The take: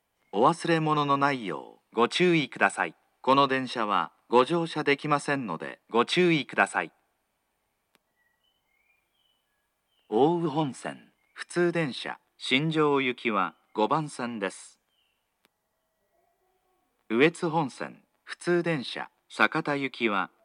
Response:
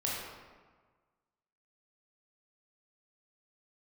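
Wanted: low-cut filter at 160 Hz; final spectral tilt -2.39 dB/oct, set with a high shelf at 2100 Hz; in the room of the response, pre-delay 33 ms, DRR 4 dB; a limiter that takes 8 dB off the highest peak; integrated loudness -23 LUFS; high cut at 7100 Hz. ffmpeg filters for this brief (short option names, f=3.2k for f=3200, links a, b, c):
-filter_complex "[0:a]highpass=160,lowpass=7.1k,highshelf=f=2.1k:g=6.5,alimiter=limit=-12dB:level=0:latency=1,asplit=2[a][b];[1:a]atrim=start_sample=2205,adelay=33[c];[b][c]afir=irnorm=-1:irlink=0,volume=-9.5dB[d];[a][d]amix=inputs=2:normalize=0,volume=2.5dB"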